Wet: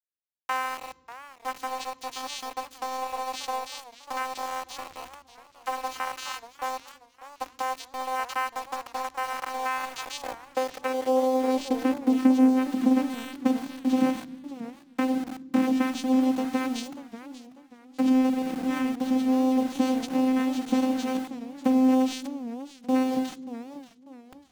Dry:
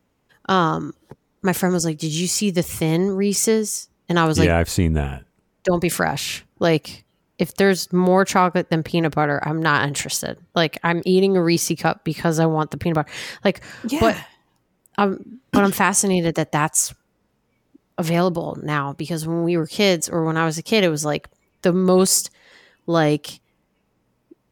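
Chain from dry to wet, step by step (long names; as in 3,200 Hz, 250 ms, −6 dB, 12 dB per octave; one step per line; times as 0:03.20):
parametric band 550 Hz −9.5 dB 0.26 octaves
mains-hum notches 50/100/150/200/250/300/350/400/450 Hz
downward compressor 5 to 1, threshold −22 dBFS, peak gain reduction 10 dB
channel vocoder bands 4, saw 259 Hz
high-pass filter sweep 950 Hz → 160 Hz, 0:09.44–0:13.23
centre clipping without the shift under −34.5 dBFS
on a send at −19.5 dB: convolution reverb RT60 1.0 s, pre-delay 3 ms
on the sum: feedback echo with a swinging delay time 589 ms, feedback 35%, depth 187 cents, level −15 dB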